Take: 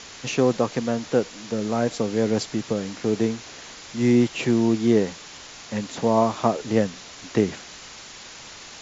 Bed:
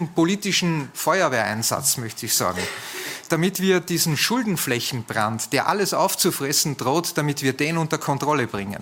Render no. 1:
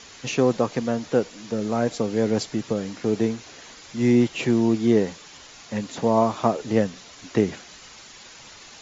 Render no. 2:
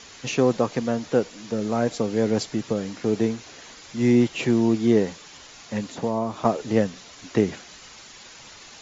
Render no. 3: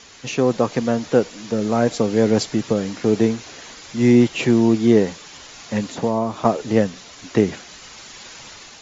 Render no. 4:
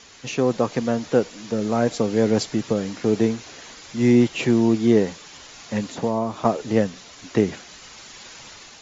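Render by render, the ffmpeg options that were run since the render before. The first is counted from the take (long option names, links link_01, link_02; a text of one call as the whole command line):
ffmpeg -i in.wav -af "afftdn=noise_reduction=6:noise_floor=-42" out.wav
ffmpeg -i in.wav -filter_complex "[0:a]asettb=1/sr,asplit=3[link_01][link_02][link_03];[link_01]atrim=end=5.884[link_04];[link_02]atrim=start=5.88:end=6.45,asetpts=PTS-STARTPTS,afade=type=in:duration=0.004:curve=qsin,afade=type=out:start_time=0.566:duration=0.004:curve=qsin,acrossover=split=480|1100[link_05][link_06][link_07];[link_05]acompressor=threshold=-25dB:ratio=4[link_08];[link_06]acompressor=threshold=-31dB:ratio=4[link_09];[link_07]acompressor=threshold=-40dB:ratio=4[link_10];[link_08][link_09][link_10]amix=inputs=3:normalize=0[link_11];[link_03]atrim=start=6.446[link_12];[link_04][link_11]acrossfade=duration=0.004:curve1=hsin:curve2=qsin[link_13];[link_13][link_12]acrossfade=duration=0.004:curve1=qsin:curve2=hsin" out.wav
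ffmpeg -i in.wav -af "dynaudnorm=framelen=220:gausssize=5:maxgain=6dB" out.wav
ffmpeg -i in.wav -af "volume=-2.5dB" out.wav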